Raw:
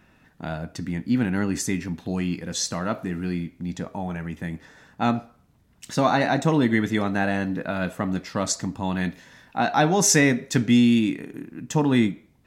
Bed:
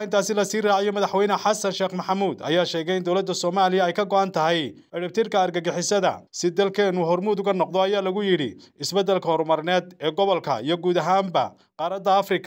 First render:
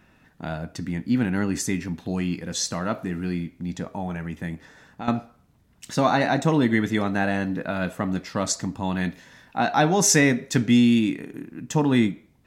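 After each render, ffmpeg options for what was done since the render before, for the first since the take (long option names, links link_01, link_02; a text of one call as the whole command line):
ffmpeg -i in.wav -filter_complex "[0:a]asettb=1/sr,asplit=3[link_01][link_02][link_03];[link_01]atrim=end=4.544[link_04];[link_02]atrim=start=4.54:end=5.08,asetpts=PTS-STARTPTS,afade=type=in:duration=0.004:curve=qsin,afade=type=out:start_time=0.536:duration=0.004:curve=qsin,acompressor=threshold=-32dB:ratio=3:attack=3.2:release=140:knee=1:detection=peak[link_05];[link_03]atrim=start=5.076[link_06];[link_04][link_05]acrossfade=duration=0.004:curve1=hsin:curve2=qsin[link_07];[link_07][link_06]acrossfade=duration=0.004:curve1=qsin:curve2=hsin" out.wav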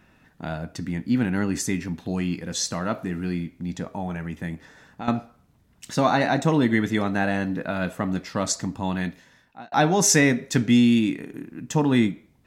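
ffmpeg -i in.wav -filter_complex "[0:a]asplit=2[link_01][link_02];[link_01]atrim=end=9.72,asetpts=PTS-STARTPTS,afade=type=out:start_time=8.89:duration=0.83[link_03];[link_02]atrim=start=9.72,asetpts=PTS-STARTPTS,afade=type=in:duration=0.004:curve=hsin[link_04];[link_03][link_04]concat=n=2:v=0:a=1" out.wav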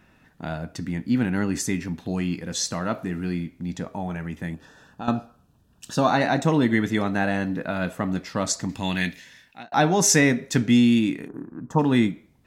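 ffmpeg -i in.wav -filter_complex "[0:a]asettb=1/sr,asplit=3[link_01][link_02][link_03];[link_01]atrim=end=4.544[link_04];[link_02]atrim=start=4.54:end=6.09,asetpts=PTS-STARTPTS,afade=type=in:duration=0.004:curve=qsin,afade=type=out:start_time=1.546:duration=0.004:curve=qsin,asuperstop=centerf=2100:order=4:qfactor=3.5[link_05];[link_03]atrim=start=6.086[link_06];[link_04][link_05]acrossfade=duration=0.004:curve1=hsin:curve2=qsin[link_07];[link_07][link_06]acrossfade=duration=0.004:curve1=qsin:curve2=hsin,asettb=1/sr,asplit=3[link_08][link_09][link_10];[link_08]atrim=end=8.694[link_11];[link_09]atrim=start=8.69:end=9.63,asetpts=PTS-STARTPTS,afade=type=in:duration=0.004:curve=qsin,afade=type=out:start_time=0.936:duration=0.004:curve=qsin,highshelf=frequency=1600:width_type=q:width=1.5:gain=8.5[link_12];[link_10]atrim=start=9.626[link_13];[link_11][link_12]acrossfade=duration=0.004:curve1=hsin:curve2=qsin[link_14];[link_14][link_13]acrossfade=duration=0.004:curve1=qsin:curve2=hsin,asplit=3[link_15][link_16][link_17];[link_15]afade=type=out:start_time=11.27:duration=0.02[link_18];[link_16]highshelf=frequency=1700:width_type=q:width=3:gain=-14,afade=type=in:start_time=11.27:duration=0.02,afade=type=out:start_time=11.78:duration=0.02[link_19];[link_17]afade=type=in:start_time=11.78:duration=0.02[link_20];[link_18][link_19][link_20]amix=inputs=3:normalize=0" out.wav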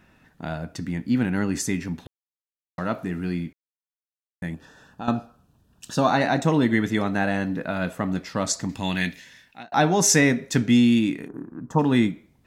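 ffmpeg -i in.wav -filter_complex "[0:a]asplit=5[link_01][link_02][link_03][link_04][link_05];[link_01]atrim=end=2.07,asetpts=PTS-STARTPTS,afade=type=out:start_time=2.066:duration=0.004:curve=hsin[link_06];[link_02]atrim=start=2.07:end=2.78,asetpts=PTS-STARTPTS,volume=0[link_07];[link_03]atrim=start=2.78:end=3.53,asetpts=PTS-STARTPTS,afade=type=in:duration=0.004:curve=hsin,afade=type=out:start_time=0.746:duration=0.004:curve=hsin[link_08];[link_04]atrim=start=3.53:end=4.42,asetpts=PTS-STARTPTS,volume=0[link_09];[link_05]atrim=start=4.42,asetpts=PTS-STARTPTS,afade=type=in:duration=0.004:curve=hsin[link_10];[link_06][link_07][link_08][link_09][link_10]concat=n=5:v=0:a=1" out.wav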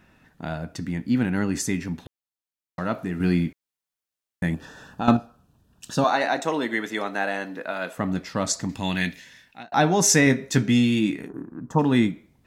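ffmpeg -i in.wav -filter_complex "[0:a]asettb=1/sr,asplit=3[link_01][link_02][link_03];[link_01]atrim=end=3.204[link_04];[link_02]atrim=start=3.2:end=5.17,asetpts=PTS-STARTPTS,afade=type=in:duration=0.004:curve=qsin,afade=type=out:start_time=1.966:duration=0.004:curve=qsin,acontrast=63[link_05];[link_03]atrim=start=5.166[link_06];[link_04][link_05]acrossfade=duration=0.004:curve1=hsin:curve2=qsin[link_07];[link_07][link_06]acrossfade=duration=0.004:curve1=qsin:curve2=hsin,asettb=1/sr,asplit=3[link_08][link_09][link_10];[link_08]atrim=end=6.044[link_11];[link_09]atrim=start=6.04:end=7.98,asetpts=PTS-STARTPTS,afade=type=in:duration=0.004:curve=qsin,afade=type=out:start_time=1.936:duration=0.004:curve=qsin,highpass=410[link_12];[link_10]atrim=start=7.976[link_13];[link_11][link_12]acrossfade=duration=0.004:curve1=hsin:curve2=qsin[link_14];[link_14][link_13]acrossfade=duration=0.004:curve1=qsin:curve2=hsin,asettb=1/sr,asplit=3[link_15][link_16][link_17];[link_15]atrim=end=10.254[link_18];[link_16]atrim=start=10.25:end=11.41,asetpts=PTS-STARTPTS,afade=type=in:duration=0.004:curve=qsin,afade=type=out:start_time=1.156:duration=0.004:curve=qsin,asplit=2[link_19][link_20];[link_20]adelay=15,volume=-7.5dB[link_21];[link_19][link_21]amix=inputs=2:normalize=0,atrim=end_sample=51156[link_22];[link_17]atrim=start=11.406[link_23];[link_18][link_22]acrossfade=duration=0.004:curve1=hsin:curve2=qsin[link_24];[link_24][link_23]acrossfade=duration=0.004:curve1=qsin:curve2=hsin" out.wav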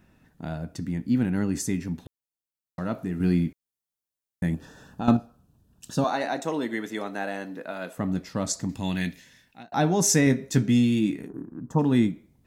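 ffmpeg -i in.wav -af "equalizer=frequency=1900:width=0.32:gain=-7.5" out.wav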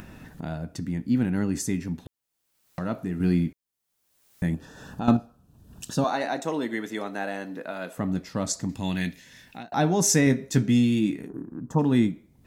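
ffmpeg -i in.wav -af "acompressor=mode=upward:threshold=-31dB:ratio=2.5" out.wav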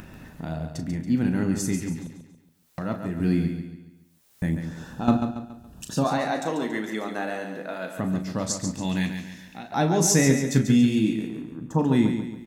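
ffmpeg -i in.wav -filter_complex "[0:a]asplit=2[link_01][link_02];[link_02]adelay=37,volume=-9.5dB[link_03];[link_01][link_03]amix=inputs=2:normalize=0,aecho=1:1:140|280|420|560|700:0.422|0.173|0.0709|0.0291|0.0119" out.wav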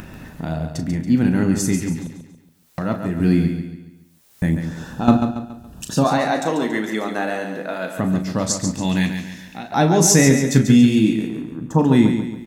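ffmpeg -i in.wav -af "volume=6.5dB,alimiter=limit=-2dB:level=0:latency=1" out.wav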